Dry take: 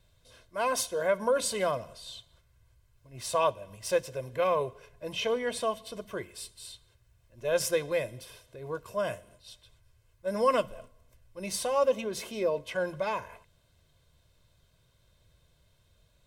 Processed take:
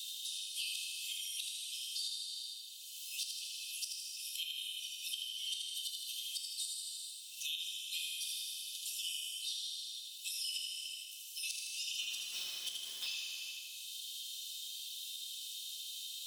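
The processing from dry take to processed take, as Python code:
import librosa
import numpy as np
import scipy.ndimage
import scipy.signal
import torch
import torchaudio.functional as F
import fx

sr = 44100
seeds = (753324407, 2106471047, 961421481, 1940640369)

p1 = fx.spec_quant(x, sr, step_db=15)
p2 = scipy.signal.sosfilt(scipy.signal.butter(16, 2800.0, 'highpass', fs=sr, output='sos'), p1)
p3 = fx.gate_flip(p2, sr, shuts_db=-35.0, range_db=-26)
p4 = fx.sample_gate(p3, sr, floor_db=-54.0, at=(11.98, 13.06), fade=0.02)
p5 = p4 + fx.echo_feedback(p4, sr, ms=79, feedback_pct=50, wet_db=-4.5, dry=0)
p6 = fx.rev_gated(p5, sr, seeds[0], gate_ms=490, shape='falling', drr_db=-1.0)
p7 = fx.band_squash(p6, sr, depth_pct=100)
y = F.gain(torch.from_numpy(p7), 7.5).numpy()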